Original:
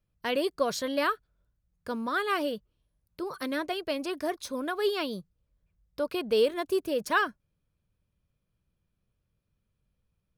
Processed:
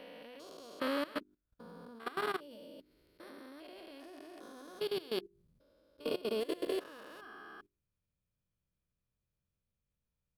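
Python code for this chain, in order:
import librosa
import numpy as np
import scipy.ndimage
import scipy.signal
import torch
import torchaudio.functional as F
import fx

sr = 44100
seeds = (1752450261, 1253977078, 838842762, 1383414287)

y = fx.spec_steps(x, sr, hold_ms=400)
y = fx.hum_notches(y, sr, base_hz=50, count=8)
y = fx.level_steps(y, sr, step_db=18)
y = y * librosa.db_to_amplitude(2.5)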